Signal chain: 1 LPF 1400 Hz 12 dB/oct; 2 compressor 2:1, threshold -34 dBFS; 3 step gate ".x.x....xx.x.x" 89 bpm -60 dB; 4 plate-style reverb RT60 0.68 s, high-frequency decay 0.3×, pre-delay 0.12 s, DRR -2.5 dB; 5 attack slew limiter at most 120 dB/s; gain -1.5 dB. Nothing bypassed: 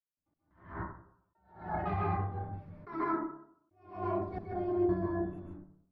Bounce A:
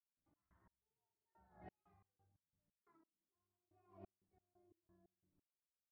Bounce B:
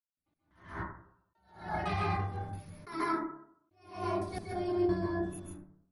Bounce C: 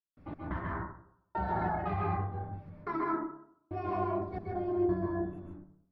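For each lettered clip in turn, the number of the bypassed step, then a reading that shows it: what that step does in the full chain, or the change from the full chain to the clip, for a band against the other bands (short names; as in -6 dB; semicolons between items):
4, momentary loudness spread change -16 LU; 1, 2 kHz band +5.5 dB; 5, 2 kHz band +2.5 dB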